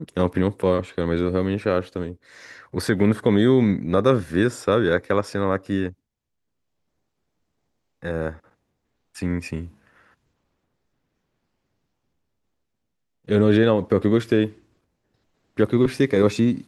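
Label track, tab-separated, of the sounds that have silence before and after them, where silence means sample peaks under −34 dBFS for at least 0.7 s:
8.030000	8.330000	sound
9.160000	9.670000	sound
13.290000	14.500000	sound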